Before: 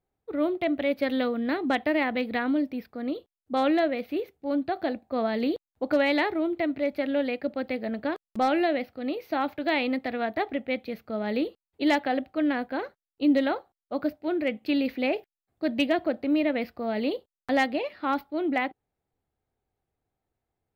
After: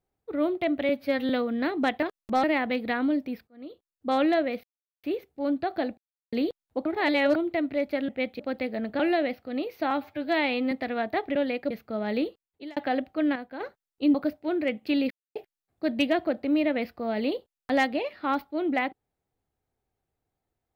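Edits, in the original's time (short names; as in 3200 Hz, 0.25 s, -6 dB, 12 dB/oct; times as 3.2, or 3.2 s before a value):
0.89–1.16 stretch 1.5×
2.93–3.56 fade in
4.09 insert silence 0.40 s
5.03–5.38 mute
5.91–6.41 reverse
7.14–7.49 swap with 10.59–10.9
8.09–8.5 move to 1.89
9.41–9.95 stretch 1.5×
11.4–11.96 fade out
12.55–12.8 gain -8 dB
13.34–13.94 cut
14.9–15.15 mute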